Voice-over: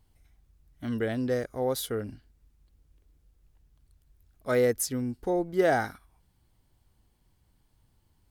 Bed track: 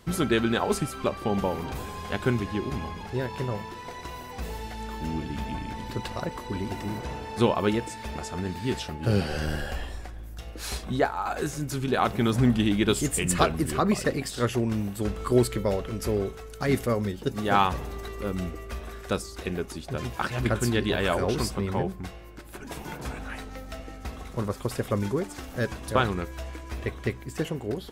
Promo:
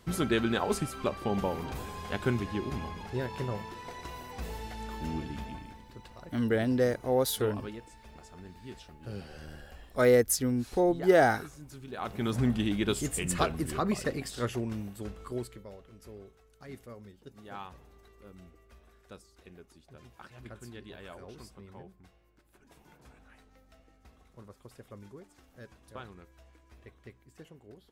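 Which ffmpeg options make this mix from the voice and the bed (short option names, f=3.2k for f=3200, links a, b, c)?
-filter_complex "[0:a]adelay=5500,volume=2dB[a];[1:a]volume=7dB,afade=t=out:st=5.17:d=0.65:silence=0.223872,afade=t=in:st=11.92:d=0.41:silence=0.281838,afade=t=out:st=14.37:d=1.29:silence=0.16788[b];[a][b]amix=inputs=2:normalize=0"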